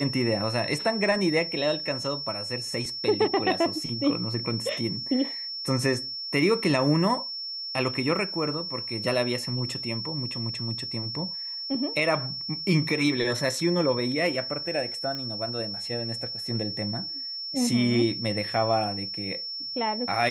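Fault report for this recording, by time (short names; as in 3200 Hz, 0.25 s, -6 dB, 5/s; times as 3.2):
tone 5400 Hz -32 dBFS
15.15 pop -21 dBFS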